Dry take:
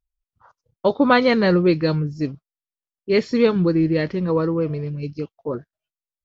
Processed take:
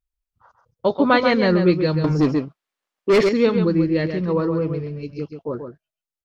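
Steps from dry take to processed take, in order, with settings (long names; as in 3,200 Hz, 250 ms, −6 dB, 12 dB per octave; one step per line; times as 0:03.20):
slap from a distant wall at 23 metres, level −7 dB
0:02.04–0:03.29: mid-hump overdrive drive 27 dB, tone 1,600 Hz, clips at −6 dBFS
level −1 dB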